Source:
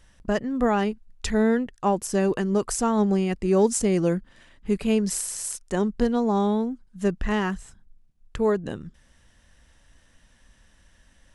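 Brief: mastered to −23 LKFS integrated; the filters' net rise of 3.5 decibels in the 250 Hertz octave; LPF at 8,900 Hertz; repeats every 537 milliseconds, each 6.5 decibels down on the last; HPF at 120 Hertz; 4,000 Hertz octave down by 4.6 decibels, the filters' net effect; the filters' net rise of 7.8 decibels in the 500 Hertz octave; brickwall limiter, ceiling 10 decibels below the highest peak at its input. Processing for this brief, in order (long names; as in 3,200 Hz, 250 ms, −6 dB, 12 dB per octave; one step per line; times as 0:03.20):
high-pass filter 120 Hz
low-pass filter 8,900 Hz
parametric band 250 Hz +3 dB
parametric band 500 Hz +9 dB
parametric band 4,000 Hz −7 dB
brickwall limiter −13.5 dBFS
repeating echo 537 ms, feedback 47%, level −6.5 dB
level −0.5 dB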